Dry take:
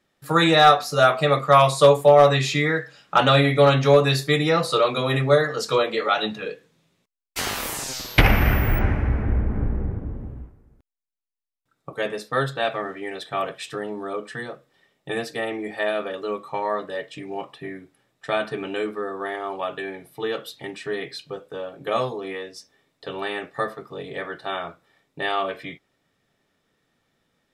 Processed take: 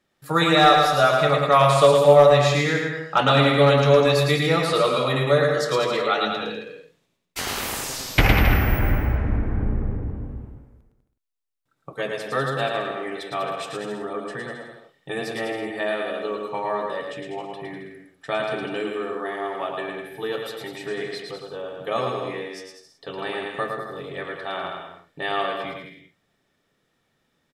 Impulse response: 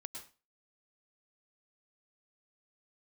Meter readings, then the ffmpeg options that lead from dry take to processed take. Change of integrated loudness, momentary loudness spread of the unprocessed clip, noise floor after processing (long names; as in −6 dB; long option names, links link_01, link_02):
0.0 dB, 19 LU, −71 dBFS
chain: -af "aecho=1:1:110|198|268.4|324.7|369.8:0.631|0.398|0.251|0.158|0.1,volume=-2dB"